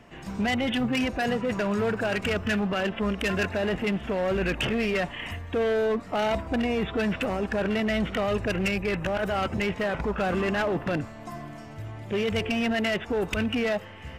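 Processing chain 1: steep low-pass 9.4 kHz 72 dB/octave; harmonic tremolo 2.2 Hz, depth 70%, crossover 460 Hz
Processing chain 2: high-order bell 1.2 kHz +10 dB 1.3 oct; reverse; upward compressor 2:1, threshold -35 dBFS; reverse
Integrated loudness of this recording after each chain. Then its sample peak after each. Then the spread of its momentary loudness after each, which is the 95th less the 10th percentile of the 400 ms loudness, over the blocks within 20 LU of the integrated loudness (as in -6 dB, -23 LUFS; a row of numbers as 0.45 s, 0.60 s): -30.5 LUFS, -24.5 LUFS; -16.0 dBFS, -10.0 dBFS; 6 LU, 6 LU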